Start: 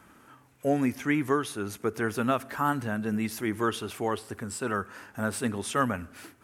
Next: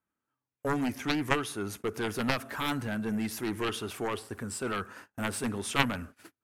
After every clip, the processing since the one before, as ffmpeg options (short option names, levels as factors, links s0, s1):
-af "aeval=exprs='0.282*(cos(1*acos(clip(val(0)/0.282,-1,1)))-cos(1*PI/2))+0.141*(cos(3*acos(clip(val(0)/0.282,-1,1)))-cos(3*PI/2))':c=same,agate=range=0.0251:threshold=0.00316:ratio=16:detection=peak,volume=1.88"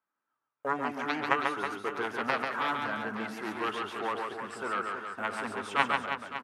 -filter_complex "[0:a]bandpass=f=1100:t=q:w=0.96:csg=0,asplit=2[s0][s1];[s1]aecho=0:1:140|322|558.6|866.2|1266:0.631|0.398|0.251|0.158|0.1[s2];[s0][s2]amix=inputs=2:normalize=0,volume=1.5"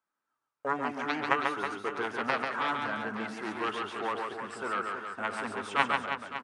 -af "aresample=22050,aresample=44100"